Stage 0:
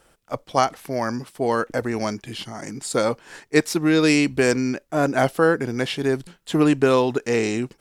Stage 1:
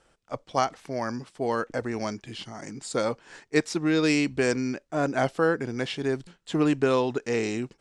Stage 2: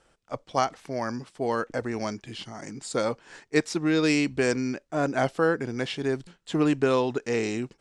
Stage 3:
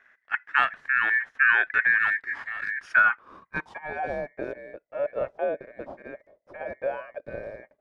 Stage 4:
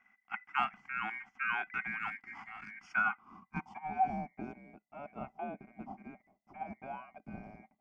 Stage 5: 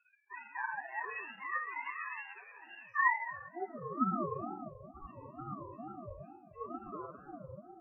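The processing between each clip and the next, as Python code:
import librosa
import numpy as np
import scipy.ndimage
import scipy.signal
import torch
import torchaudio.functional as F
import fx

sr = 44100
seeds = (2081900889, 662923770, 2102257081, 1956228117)

y1 = scipy.signal.sosfilt(scipy.signal.butter(4, 8400.0, 'lowpass', fs=sr, output='sos'), x)
y1 = F.gain(torch.from_numpy(y1), -5.5).numpy()
y2 = y1
y3 = fx.high_shelf_res(y2, sr, hz=5700.0, db=12.5, q=1.5)
y3 = y3 * np.sin(2.0 * np.pi * 2000.0 * np.arange(len(y3)) / sr)
y3 = fx.filter_sweep_lowpass(y3, sr, from_hz=1700.0, to_hz=590.0, start_s=2.68, end_s=4.44, q=7.5)
y4 = fx.fixed_phaser(y3, sr, hz=2600.0, stages=8)
y4 = fx.small_body(y4, sr, hz=(210.0, 760.0, 2000.0), ring_ms=50, db=16)
y4 = F.gain(torch.from_numpy(y4), -8.0).numpy()
y5 = fx.spec_topn(y4, sr, count=2)
y5 = fx.room_shoebox(y5, sr, seeds[0], volume_m3=1300.0, walls='mixed', distance_m=2.4)
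y5 = fx.ring_lfo(y5, sr, carrier_hz=440.0, swing_pct=30, hz=2.2)
y5 = F.gain(torch.from_numpy(y5), 1.5).numpy()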